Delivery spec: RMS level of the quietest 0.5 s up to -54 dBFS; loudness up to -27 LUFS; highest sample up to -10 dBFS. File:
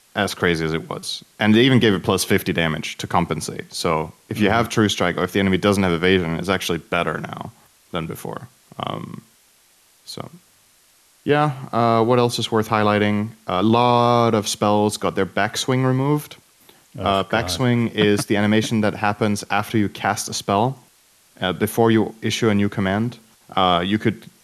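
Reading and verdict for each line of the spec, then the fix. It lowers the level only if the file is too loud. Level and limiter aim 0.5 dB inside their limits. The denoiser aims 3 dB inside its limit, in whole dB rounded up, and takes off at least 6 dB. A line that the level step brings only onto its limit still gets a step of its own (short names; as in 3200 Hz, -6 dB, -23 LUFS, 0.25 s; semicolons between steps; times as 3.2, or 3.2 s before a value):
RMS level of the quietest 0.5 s -56 dBFS: OK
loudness -20.0 LUFS: fail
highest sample -4.5 dBFS: fail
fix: gain -7.5 dB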